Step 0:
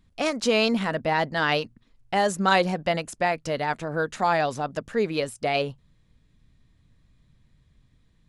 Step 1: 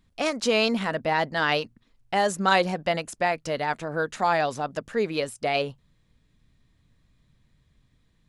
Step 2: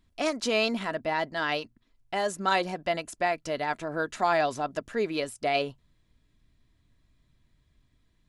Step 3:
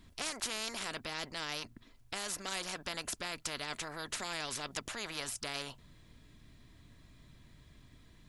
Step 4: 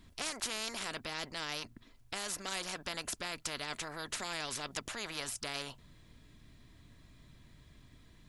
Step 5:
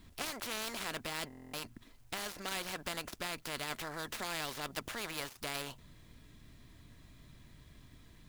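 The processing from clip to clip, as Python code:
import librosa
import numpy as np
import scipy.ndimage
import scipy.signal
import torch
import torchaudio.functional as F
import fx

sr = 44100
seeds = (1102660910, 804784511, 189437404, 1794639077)

y1 = fx.low_shelf(x, sr, hz=230.0, db=-4.0)
y2 = y1 + 0.34 * np.pad(y1, (int(3.0 * sr / 1000.0), 0))[:len(y1)]
y2 = fx.rider(y2, sr, range_db=10, speed_s=2.0)
y2 = F.gain(torch.from_numpy(y2), -4.0).numpy()
y3 = fx.spectral_comp(y2, sr, ratio=4.0)
y3 = F.gain(torch.from_numpy(y3), -9.0).numpy()
y4 = y3
y5 = fx.dead_time(y4, sr, dead_ms=0.058)
y5 = fx.quant_dither(y5, sr, seeds[0], bits=12, dither='none')
y5 = fx.buffer_glitch(y5, sr, at_s=(1.28,), block=1024, repeats=10)
y5 = F.gain(torch.from_numpy(y5), 1.5).numpy()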